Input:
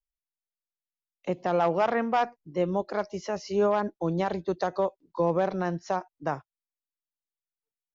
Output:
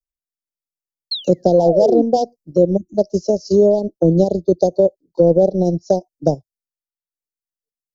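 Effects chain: spectral selection erased 2.77–2.98 s, 350–5700 Hz; transient shaper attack +5 dB, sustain -10 dB; painted sound fall, 1.11–2.02 s, 270–4400 Hz -30 dBFS; elliptic band-stop 580–4800 Hz, stop band 50 dB; in parallel at +2 dB: compressor with a negative ratio -26 dBFS, ratio -1; on the sum: three bands expanded up and down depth 40%; trim +7 dB

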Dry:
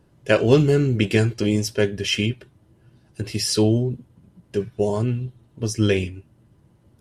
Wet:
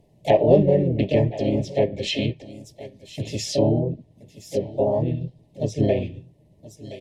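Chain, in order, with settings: delay 1024 ms -18 dB; harmony voices -7 st -17 dB, +4 st -6 dB, +5 st -4 dB; small resonant body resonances 620/1800 Hz, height 11 dB, ringing for 45 ms; low-pass that closes with the level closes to 1.7 kHz, closed at -12.5 dBFS; Butterworth band-stop 1.4 kHz, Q 1.1; trim -4 dB

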